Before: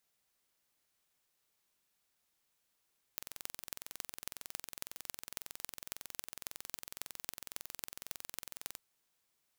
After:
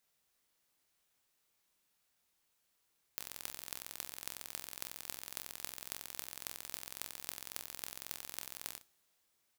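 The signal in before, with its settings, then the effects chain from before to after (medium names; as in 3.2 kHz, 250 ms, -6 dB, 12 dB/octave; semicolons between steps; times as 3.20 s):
pulse train 21.9 per s, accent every 6, -10.5 dBFS 5.60 s
on a send: early reflections 27 ms -6.5 dB, 61 ms -15 dB; on the sum: two-slope reverb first 0.43 s, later 3.7 s, from -21 dB, DRR 18 dB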